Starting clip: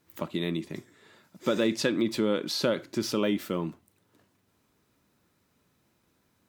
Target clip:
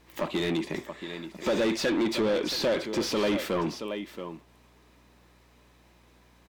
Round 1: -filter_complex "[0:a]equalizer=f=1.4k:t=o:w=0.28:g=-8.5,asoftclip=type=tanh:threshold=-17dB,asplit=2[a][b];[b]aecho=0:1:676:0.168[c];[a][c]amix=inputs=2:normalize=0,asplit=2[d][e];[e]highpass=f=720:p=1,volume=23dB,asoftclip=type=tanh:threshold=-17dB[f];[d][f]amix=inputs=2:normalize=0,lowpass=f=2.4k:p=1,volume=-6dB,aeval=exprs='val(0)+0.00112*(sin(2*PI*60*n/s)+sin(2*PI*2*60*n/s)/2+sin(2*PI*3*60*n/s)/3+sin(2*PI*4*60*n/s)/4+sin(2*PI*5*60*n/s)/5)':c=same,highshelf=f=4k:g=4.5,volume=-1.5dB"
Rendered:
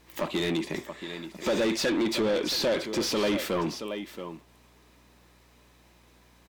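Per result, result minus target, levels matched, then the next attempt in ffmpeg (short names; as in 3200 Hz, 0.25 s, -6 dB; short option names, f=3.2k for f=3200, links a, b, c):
soft clip: distortion +13 dB; 8000 Hz band +3.0 dB
-filter_complex "[0:a]equalizer=f=1.4k:t=o:w=0.28:g=-8.5,asoftclip=type=tanh:threshold=-9.5dB,asplit=2[a][b];[b]aecho=0:1:676:0.168[c];[a][c]amix=inputs=2:normalize=0,asplit=2[d][e];[e]highpass=f=720:p=1,volume=23dB,asoftclip=type=tanh:threshold=-17dB[f];[d][f]amix=inputs=2:normalize=0,lowpass=f=2.4k:p=1,volume=-6dB,aeval=exprs='val(0)+0.00112*(sin(2*PI*60*n/s)+sin(2*PI*2*60*n/s)/2+sin(2*PI*3*60*n/s)/3+sin(2*PI*4*60*n/s)/4+sin(2*PI*5*60*n/s)/5)':c=same,highshelf=f=4k:g=4.5,volume=-1.5dB"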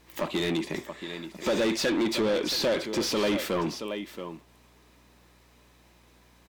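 8000 Hz band +3.0 dB
-filter_complex "[0:a]equalizer=f=1.4k:t=o:w=0.28:g=-8.5,asoftclip=type=tanh:threshold=-9.5dB,asplit=2[a][b];[b]aecho=0:1:676:0.168[c];[a][c]amix=inputs=2:normalize=0,asplit=2[d][e];[e]highpass=f=720:p=1,volume=23dB,asoftclip=type=tanh:threshold=-17dB[f];[d][f]amix=inputs=2:normalize=0,lowpass=f=2.4k:p=1,volume=-6dB,aeval=exprs='val(0)+0.00112*(sin(2*PI*60*n/s)+sin(2*PI*2*60*n/s)/2+sin(2*PI*3*60*n/s)/3+sin(2*PI*4*60*n/s)/4+sin(2*PI*5*60*n/s)/5)':c=same,volume=-1.5dB"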